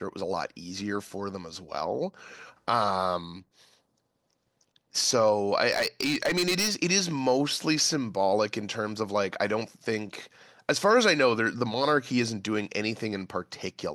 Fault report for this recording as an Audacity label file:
5.710000	6.750000	clipped -21.5 dBFS

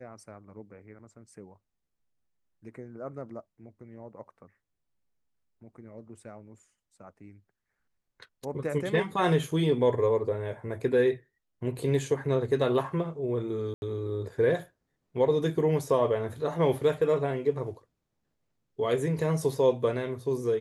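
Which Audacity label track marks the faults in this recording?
13.740000	13.820000	dropout 81 ms

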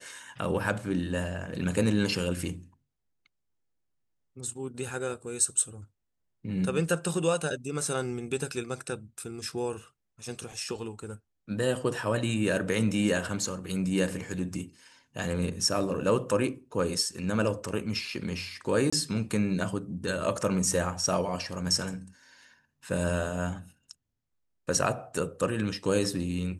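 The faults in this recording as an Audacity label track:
18.900000	18.930000	dropout 25 ms

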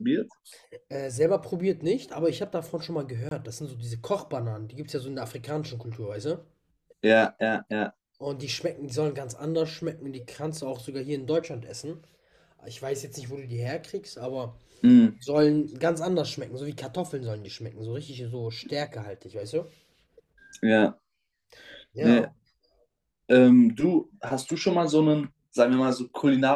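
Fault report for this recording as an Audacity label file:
3.290000	3.310000	dropout 22 ms

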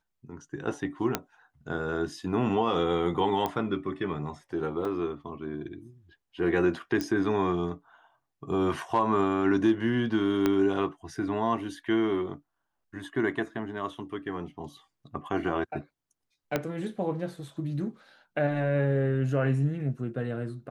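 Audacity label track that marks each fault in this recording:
1.150000	1.150000	pop -10 dBFS
3.460000	3.460000	pop -16 dBFS
4.850000	4.850000	dropout 2.2 ms
7.010000	7.010000	pop -17 dBFS
10.460000	10.460000	pop -12 dBFS
16.560000	16.560000	pop -12 dBFS

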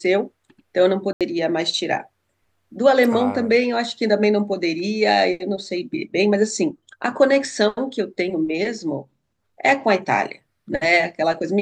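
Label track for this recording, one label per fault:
1.130000	1.210000	dropout 77 ms

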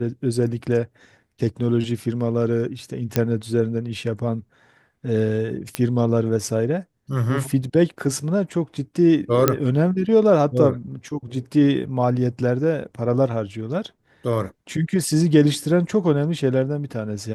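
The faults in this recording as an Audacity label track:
3.160000	3.160000	pop -5 dBFS
5.750000	5.750000	pop -7 dBFS
9.480000	9.480000	pop -1 dBFS

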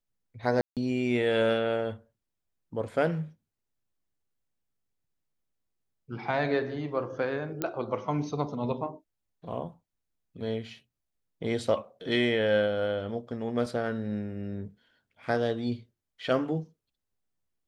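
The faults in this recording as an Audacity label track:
0.610000	0.770000	dropout 157 ms
7.620000	7.620000	pop -15 dBFS
13.660000	13.660000	dropout 2.1 ms

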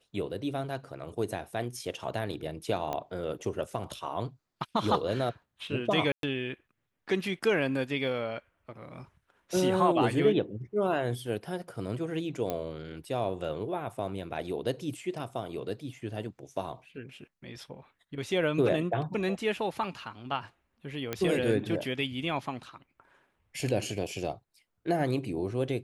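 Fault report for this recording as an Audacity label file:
2.930000	2.930000	pop -20 dBFS
6.120000	6.230000	dropout 112 ms
12.500000	12.500000	pop -17 dBFS
21.130000	21.130000	pop -16 dBFS

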